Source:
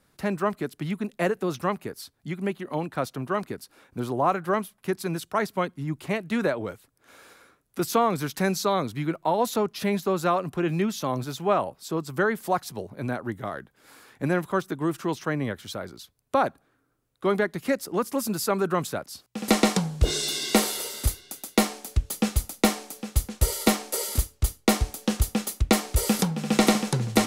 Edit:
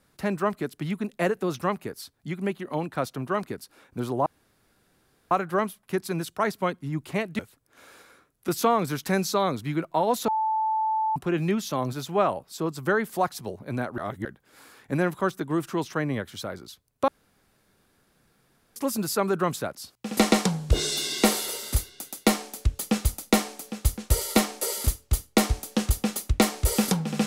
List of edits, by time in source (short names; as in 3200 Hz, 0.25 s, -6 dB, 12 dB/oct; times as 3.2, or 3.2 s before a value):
4.26 insert room tone 1.05 s
6.34–6.7 cut
9.59–10.47 bleep 876 Hz -22 dBFS
13.29–13.56 reverse
16.39–18.07 room tone